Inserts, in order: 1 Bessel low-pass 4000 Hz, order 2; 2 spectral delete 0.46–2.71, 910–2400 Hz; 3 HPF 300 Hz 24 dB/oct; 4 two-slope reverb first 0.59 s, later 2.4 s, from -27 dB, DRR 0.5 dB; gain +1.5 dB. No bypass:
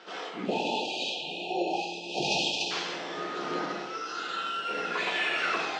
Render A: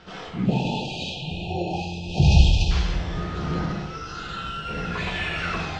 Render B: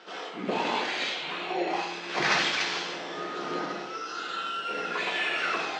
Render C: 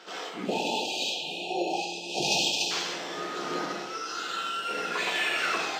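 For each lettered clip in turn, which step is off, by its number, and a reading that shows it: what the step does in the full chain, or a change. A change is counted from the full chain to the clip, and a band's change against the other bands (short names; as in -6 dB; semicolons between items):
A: 3, 125 Hz band +26.0 dB; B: 2, crest factor change +3.5 dB; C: 1, 8 kHz band +7.5 dB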